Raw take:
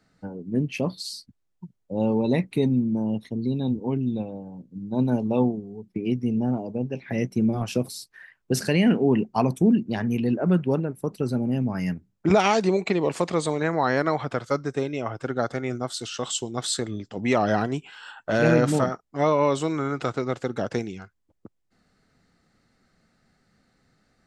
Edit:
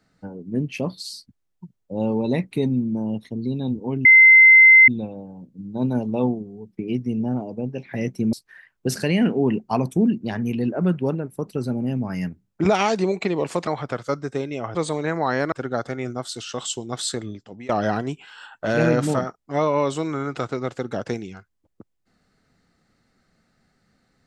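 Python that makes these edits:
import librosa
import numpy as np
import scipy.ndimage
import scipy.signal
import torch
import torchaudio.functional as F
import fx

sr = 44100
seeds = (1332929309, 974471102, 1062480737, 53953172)

y = fx.edit(x, sr, fx.insert_tone(at_s=4.05, length_s=0.83, hz=2070.0, db=-6.5),
    fx.cut(start_s=7.5, length_s=0.48),
    fx.move(start_s=13.32, length_s=0.77, to_s=15.17),
    fx.fade_out_to(start_s=16.88, length_s=0.46, floor_db=-23.5), tone=tone)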